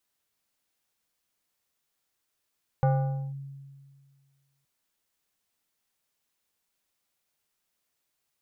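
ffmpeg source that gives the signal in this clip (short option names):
-f lavfi -i "aevalsrc='0.126*pow(10,-3*t/1.87)*sin(2*PI*138*t+0.81*clip(1-t/0.51,0,1)*sin(2*PI*4.81*138*t))':d=1.82:s=44100"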